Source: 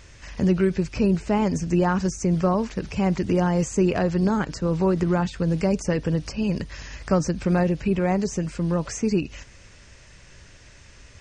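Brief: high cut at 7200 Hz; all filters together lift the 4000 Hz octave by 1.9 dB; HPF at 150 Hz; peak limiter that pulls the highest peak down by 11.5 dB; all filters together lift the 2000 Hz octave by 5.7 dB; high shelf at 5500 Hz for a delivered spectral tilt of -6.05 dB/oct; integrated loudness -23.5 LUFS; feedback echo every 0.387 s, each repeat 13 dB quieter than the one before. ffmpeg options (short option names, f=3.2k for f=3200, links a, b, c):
-af "highpass=150,lowpass=7.2k,equalizer=f=2k:t=o:g=7.5,equalizer=f=4k:t=o:g=4,highshelf=f=5.5k:g=-7.5,alimiter=limit=-18dB:level=0:latency=1,aecho=1:1:387|774|1161:0.224|0.0493|0.0108,volume=4.5dB"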